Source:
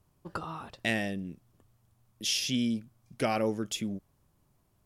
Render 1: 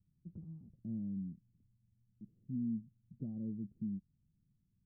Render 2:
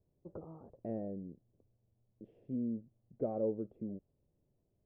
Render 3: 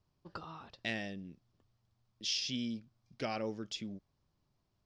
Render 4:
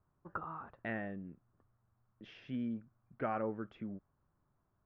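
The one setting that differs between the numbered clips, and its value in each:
ladder low-pass, frequency: 230, 610, 5800, 1700 Hz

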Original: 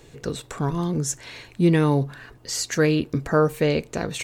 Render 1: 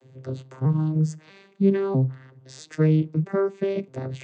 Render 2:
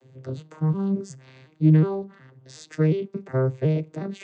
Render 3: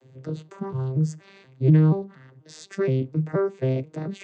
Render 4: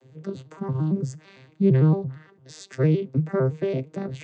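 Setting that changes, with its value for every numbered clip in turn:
arpeggiated vocoder, a note every: 0.645, 0.364, 0.239, 0.113 s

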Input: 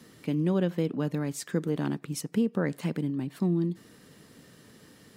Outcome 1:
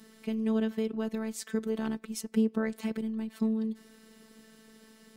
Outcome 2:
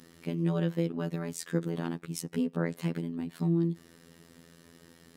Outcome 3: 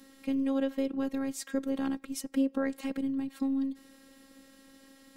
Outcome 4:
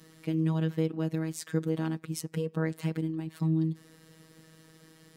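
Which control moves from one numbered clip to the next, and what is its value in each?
robotiser, frequency: 220, 84, 270, 160 Hz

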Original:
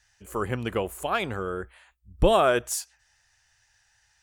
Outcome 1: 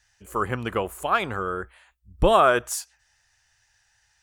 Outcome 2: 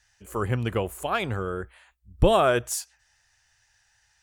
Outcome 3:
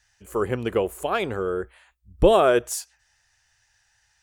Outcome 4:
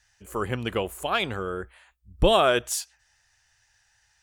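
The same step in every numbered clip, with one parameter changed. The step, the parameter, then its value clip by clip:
dynamic EQ, frequency: 1200, 110, 420, 3400 Hz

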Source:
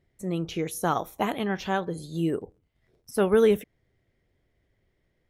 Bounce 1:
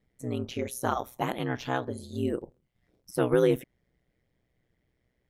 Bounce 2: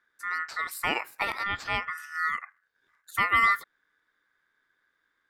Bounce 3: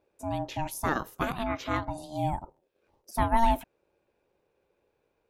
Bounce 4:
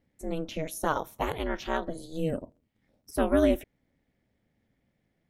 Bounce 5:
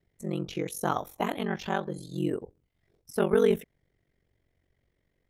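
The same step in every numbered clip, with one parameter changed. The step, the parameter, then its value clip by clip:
ring modulator, frequency: 62, 1600, 460, 160, 23 Hz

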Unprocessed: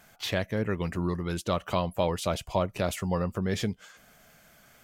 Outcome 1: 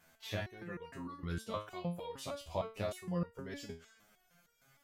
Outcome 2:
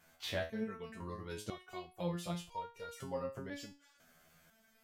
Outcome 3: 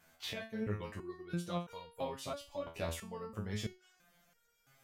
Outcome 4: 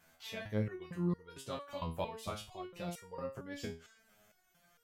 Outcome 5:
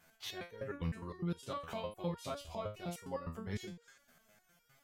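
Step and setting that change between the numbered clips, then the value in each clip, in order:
stepped resonator, rate: 6.5, 2, 3, 4.4, 9.8 Hz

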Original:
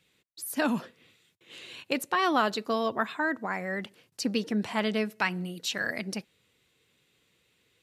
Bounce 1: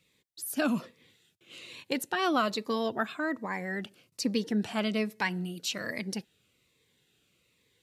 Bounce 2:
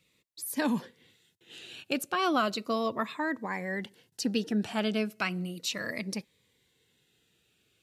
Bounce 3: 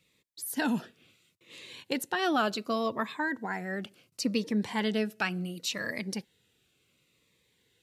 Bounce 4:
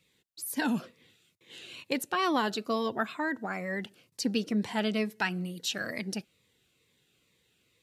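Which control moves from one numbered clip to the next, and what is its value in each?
cascading phaser, rate: 1.2, 0.35, 0.7, 2.2 Hz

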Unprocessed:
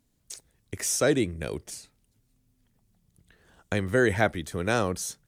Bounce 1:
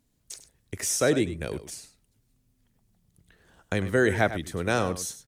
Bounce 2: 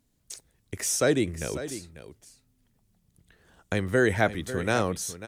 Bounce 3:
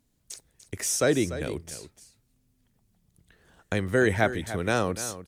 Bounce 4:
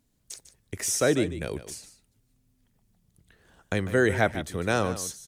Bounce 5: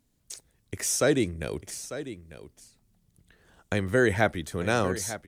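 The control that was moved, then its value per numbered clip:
echo, time: 0.1, 0.545, 0.294, 0.149, 0.897 s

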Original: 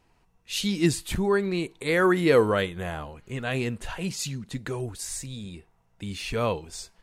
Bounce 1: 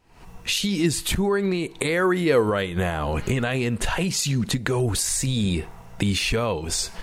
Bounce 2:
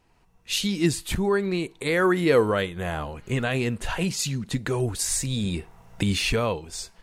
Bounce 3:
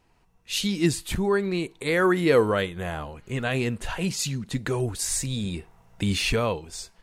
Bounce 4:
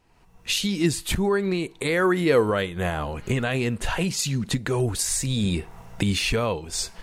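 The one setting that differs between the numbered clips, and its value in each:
recorder AGC, rising by: 86, 13, 5.4, 35 dB/s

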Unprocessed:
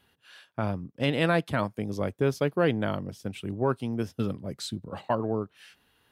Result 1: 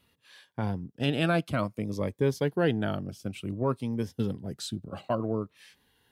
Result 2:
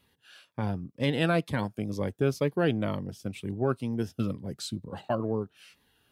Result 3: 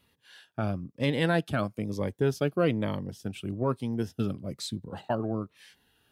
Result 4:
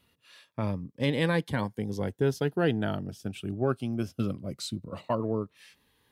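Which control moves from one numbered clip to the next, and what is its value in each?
cascading phaser, rate: 0.56, 2.1, 1.1, 0.2 Hz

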